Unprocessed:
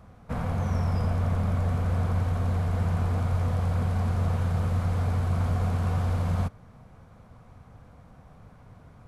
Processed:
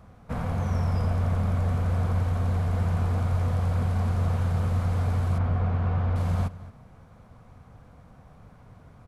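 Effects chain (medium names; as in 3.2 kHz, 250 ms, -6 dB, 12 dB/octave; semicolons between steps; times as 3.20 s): 5.38–6.16 s: low-pass 2.6 kHz 12 dB/octave; echo from a far wall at 38 m, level -17 dB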